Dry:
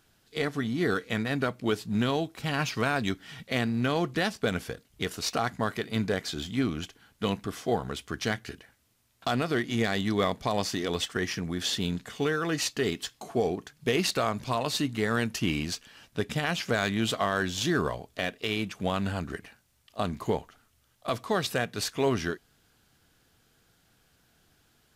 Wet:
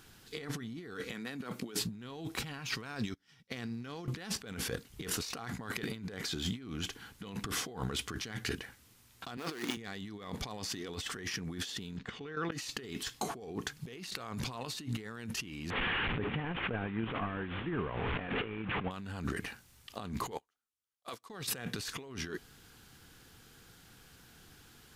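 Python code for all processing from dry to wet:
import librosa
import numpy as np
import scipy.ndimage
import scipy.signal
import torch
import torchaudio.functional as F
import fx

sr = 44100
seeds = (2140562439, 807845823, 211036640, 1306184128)

y = fx.chain(x, sr, fx.highpass(hz=160.0, slope=24),
    fx.high_shelf(hz=5500.0, db=5.0), at=(1.12, 1.79))
y = fx.chain(y, sr, fx.peak_eq(hz=5400.0, db=10.0, octaves=0.31),
    fx.upward_expand(threshold_db=-47.0, expansion=2.5), at=(2.86, 4.08))
y = fx.chain(y, sr, fx.dead_time(dead_ms=0.17),
    fx.highpass(hz=300.0, slope=12), at=(9.37, 9.77))
y = fx.chain(y, sr, fx.lowpass(hz=3600.0, slope=12),
    fx.level_steps(step_db=14), at=(11.97, 12.52))
y = fx.chain(y, sr, fx.delta_mod(bps=16000, step_db=-35.0),
    fx.over_compress(threshold_db=-32.0, ratio=-0.5), at=(15.7, 18.91))
y = fx.chain(y, sr, fx.bass_treble(bass_db=-13, treble_db=5),
    fx.upward_expand(threshold_db=-50.0, expansion=2.5), at=(20.31, 21.3))
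y = fx.peak_eq(y, sr, hz=630.0, db=-9.0, octaves=0.27)
y = fx.over_compress(y, sr, threshold_db=-40.0, ratio=-1.0)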